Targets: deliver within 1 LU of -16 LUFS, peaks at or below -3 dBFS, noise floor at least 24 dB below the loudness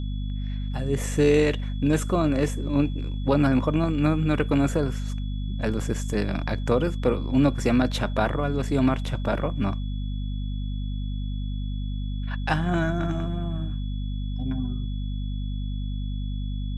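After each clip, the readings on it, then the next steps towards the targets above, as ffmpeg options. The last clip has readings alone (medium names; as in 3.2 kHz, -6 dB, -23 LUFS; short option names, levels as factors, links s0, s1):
hum 50 Hz; highest harmonic 250 Hz; hum level -26 dBFS; steady tone 3.4 kHz; tone level -48 dBFS; loudness -26.0 LUFS; peak level -7.5 dBFS; loudness target -16.0 LUFS
-> -af "bandreject=f=50:t=h:w=4,bandreject=f=100:t=h:w=4,bandreject=f=150:t=h:w=4,bandreject=f=200:t=h:w=4,bandreject=f=250:t=h:w=4"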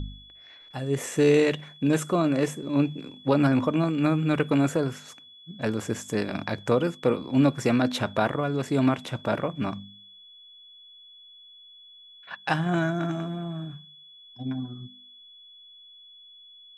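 hum not found; steady tone 3.4 kHz; tone level -48 dBFS
-> -af "bandreject=f=3400:w=30"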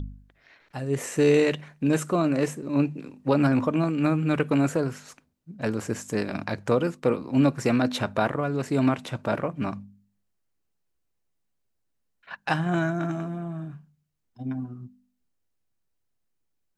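steady tone not found; loudness -26.0 LUFS; peak level -8.0 dBFS; loudness target -16.0 LUFS
-> -af "volume=3.16,alimiter=limit=0.708:level=0:latency=1"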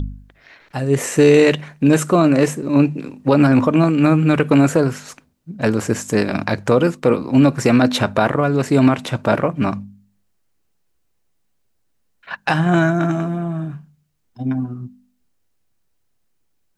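loudness -16.5 LUFS; peak level -3.0 dBFS; noise floor -65 dBFS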